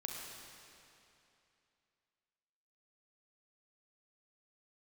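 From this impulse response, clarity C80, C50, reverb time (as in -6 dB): 1.0 dB, 0.0 dB, 2.8 s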